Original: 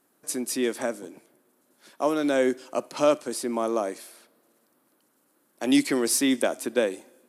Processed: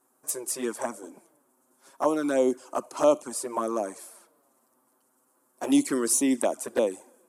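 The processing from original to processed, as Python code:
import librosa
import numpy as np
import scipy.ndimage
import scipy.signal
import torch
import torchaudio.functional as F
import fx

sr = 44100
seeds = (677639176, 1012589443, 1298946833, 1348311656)

y = fx.graphic_eq_10(x, sr, hz=(125, 1000, 2000, 4000, 8000), db=(-4, 8, -5, -7, 7))
y = fx.env_flanger(y, sr, rest_ms=8.0, full_db=-17.5)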